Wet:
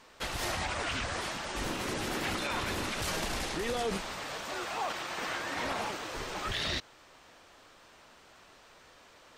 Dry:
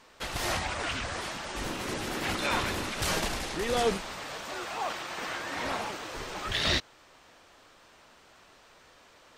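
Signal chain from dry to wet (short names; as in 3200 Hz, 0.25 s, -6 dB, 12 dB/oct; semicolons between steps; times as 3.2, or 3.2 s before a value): limiter -24 dBFS, peak gain reduction 9 dB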